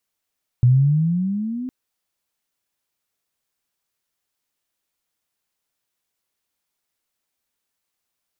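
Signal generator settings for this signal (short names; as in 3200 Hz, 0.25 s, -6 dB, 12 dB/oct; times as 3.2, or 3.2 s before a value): chirp logarithmic 120 Hz -> 260 Hz -9.5 dBFS -> -25.5 dBFS 1.06 s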